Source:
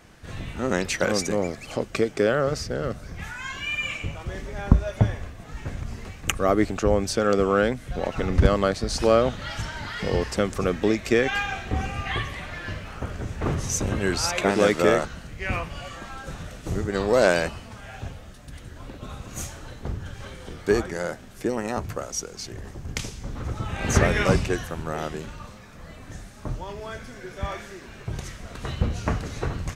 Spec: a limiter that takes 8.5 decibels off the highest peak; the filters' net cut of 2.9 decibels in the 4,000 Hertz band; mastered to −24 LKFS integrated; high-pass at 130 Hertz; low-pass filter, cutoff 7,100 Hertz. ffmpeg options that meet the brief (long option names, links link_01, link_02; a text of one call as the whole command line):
ffmpeg -i in.wav -af "highpass=130,lowpass=7100,equalizer=frequency=4000:width_type=o:gain=-3.5,volume=4.5dB,alimiter=limit=-8dB:level=0:latency=1" out.wav